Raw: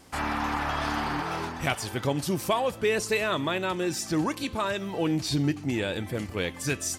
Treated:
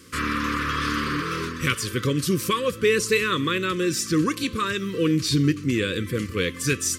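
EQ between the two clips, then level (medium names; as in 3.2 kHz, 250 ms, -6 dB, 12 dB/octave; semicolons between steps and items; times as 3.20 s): high-pass 69 Hz; elliptic band-stop 510–1100 Hz, stop band 50 dB; +6.0 dB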